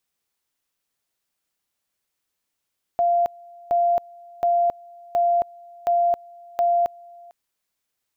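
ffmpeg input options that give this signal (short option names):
-f lavfi -i "aevalsrc='pow(10,(-16-25.5*gte(mod(t,0.72),0.27))/20)*sin(2*PI*693*t)':d=4.32:s=44100"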